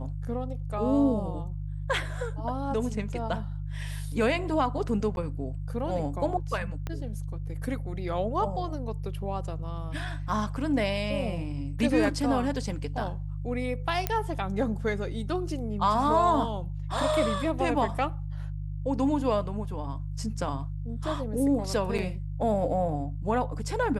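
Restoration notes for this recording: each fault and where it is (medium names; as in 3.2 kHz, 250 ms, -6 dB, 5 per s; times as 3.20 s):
hum 50 Hz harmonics 3 -34 dBFS
5.16–5.17 s: dropout 11 ms
6.87 s: pop -20 dBFS
14.07 s: pop -10 dBFS
21.98–21.99 s: dropout 6 ms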